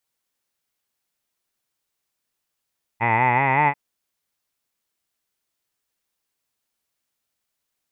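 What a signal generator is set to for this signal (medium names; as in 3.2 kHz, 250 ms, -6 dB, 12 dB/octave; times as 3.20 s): formant vowel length 0.74 s, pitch 110 Hz, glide +5.5 st, F1 880 Hz, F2 2 kHz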